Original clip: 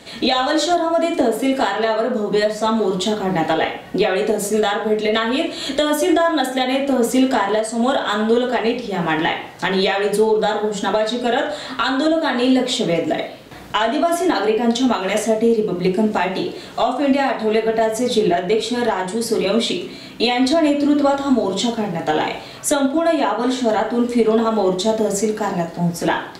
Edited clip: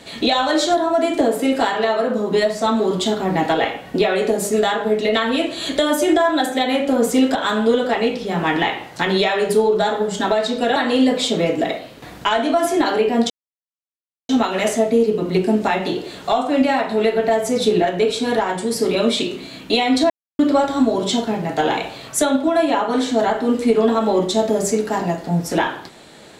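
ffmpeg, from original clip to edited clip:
-filter_complex "[0:a]asplit=6[a][b][c][d][e][f];[a]atrim=end=7.352[g];[b]atrim=start=7.978:end=11.392[h];[c]atrim=start=12.248:end=14.79,asetpts=PTS-STARTPTS,afade=t=out:st=2.538:d=0.004:c=hsin,apad=pad_dur=0.99[i];[d]atrim=start=14.79:end=20.6,asetpts=PTS-STARTPTS,afade=t=in:d=0.004:c=hsin,afade=t=out:st=5.806:d=0.004:c=hsin[j];[e]atrim=start=20.6:end=20.89,asetpts=PTS-STARTPTS,volume=0[k];[f]atrim=start=20.89,asetpts=PTS-STARTPTS,afade=t=in:d=0.004:c=hsin[l];[g][h]acrossfade=d=0.004:c1=hsin:c2=hsin[m];[i][j][k][l]concat=n=4:v=0:a=1[n];[m][n]acrossfade=d=0.004:c1=hsin:c2=hsin"

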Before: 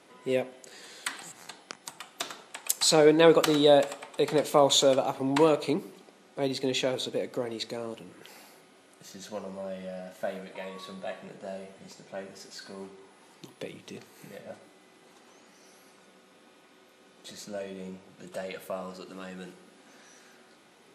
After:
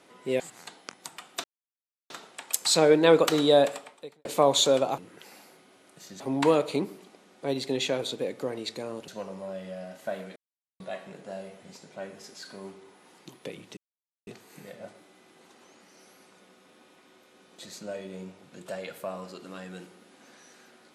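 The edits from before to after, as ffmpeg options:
-filter_complex "[0:a]asplit=10[a][b][c][d][e][f][g][h][i][j];[a]atrim=end=0.402[k];[b]atrim=start=1.218:end=2.26,asetpts=PTS-STARTPTS,afade=t=out:st=1.038:d=0.004:c=hsin,apad=pad_dur=0.66[l];[c]atrim=start=2.26:end=4.41,asetpts=PTS-STARTPTS,afade=t=in:d=0.004:c=hsin,afade=t=out:st=1.67:d=0.48:c=qua[m];[d]atrim=start=4.41:end=5.142,asetpts=PTS-STARTPTS,afade=t=in:d=0.004:c=hsin[n];[e]atrim=start=8.018:end=9.242[o];[f]atrim=start=5.138:end=8.022[p];[g]atrim=start=9.238:end=10.52,asetpts=PTS-STARTPTS,afade=t=out:st=1.278:d=0.004:c=hsin[q];[h]atrim=start=10.52:end=10.96,asetpts=PTS-STARTPTS,volume=0[r];[i]atrim=start=10.96:end=13.93,asetpts=PTS-STARTPTS,afade=t=in:d=0.004:c=hsin,afade=t=out:st=2.966:d=0.004:c=hsin,apad=pad_dur=0.5[s];[j]atrim=start=13.93,asetpts=PTS-STARTPTS,afade=t=in:d=0.004:c=hsin[t];[l][m][n]concat=n=3:v=0:a=1[u];[k][u]acrossfade=d=0.004:c1=hsin:c2=hsin[v];[v][o]acrossfade=d=0.004:c1=hsin:c2=hsin[w];[w][p]acrossfade=d=0.004:c1=hsin:c2=hsin[x];[q][r][s][t]concat=n=4:v=0:a=1[y];[x][y]acrossfade=d=0.004:c1=hsin:c2=hsin"

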